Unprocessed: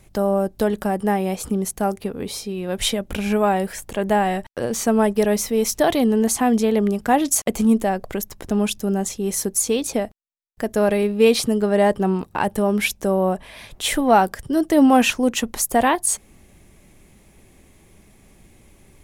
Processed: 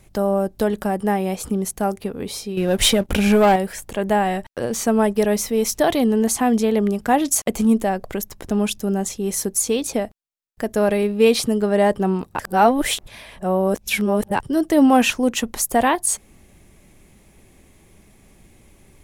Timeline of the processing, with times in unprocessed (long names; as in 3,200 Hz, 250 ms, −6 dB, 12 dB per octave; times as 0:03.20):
0:02.57–0:03.56: leveller curve on the samples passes 2
0:12.39–0:14.40: reverse